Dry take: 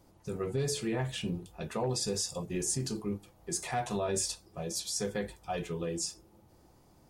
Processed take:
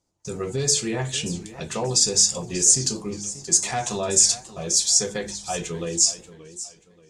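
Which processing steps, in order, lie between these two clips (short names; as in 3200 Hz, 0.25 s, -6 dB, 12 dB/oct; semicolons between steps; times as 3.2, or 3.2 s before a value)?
high shelf 3500 Hz +7 dB; de-hum 50.78 Hz, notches 6; gate with hold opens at -47 dBFS; synth low-pass 7000 Hz, resonance Q 2.6; warbling echo 0.582 s, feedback 32%, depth 135 cents, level -15.5 dB; gain +5.5 dB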